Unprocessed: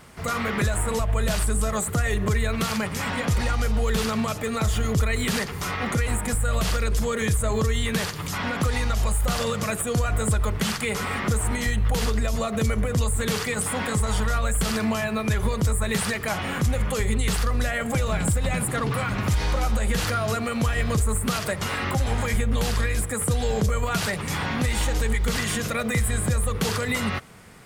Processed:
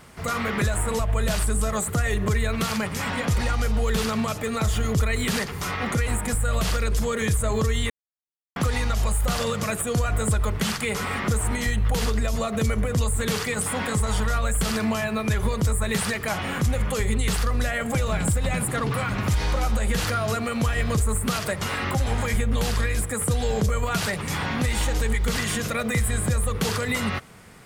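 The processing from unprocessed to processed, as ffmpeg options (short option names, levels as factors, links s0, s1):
-filter_complex "[0:a]asplit=3[s0][s1][s2];[s0]atrim=end=7.9,asetpts=PTS-STARTPTS,afade=t=out:st=7.896:d=0.004:c=hsin[s3];[s1]atrim=start=7.9:end=8.56,asetpts=PTS-STARTPTS,volume=0[s4];[s2]atrim=start=8.56,asetpts=PTS-STARTPTS,afade=t=in:d=0.004:c=hsin[s5];[s3][s4][s5]concat=n=3:v=0:a=1"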